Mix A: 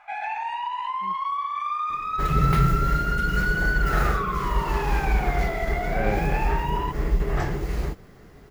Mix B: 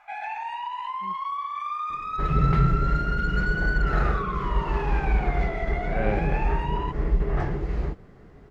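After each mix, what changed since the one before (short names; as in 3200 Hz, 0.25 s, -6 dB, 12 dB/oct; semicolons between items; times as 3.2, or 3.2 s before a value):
first sound -3.0 dB; second sound: add tape spacing loss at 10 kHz 24 dB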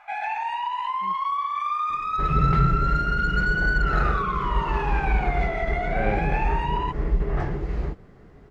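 first sound +4.5 dB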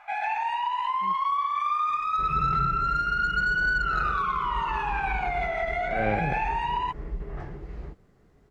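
second sound -11.0 dB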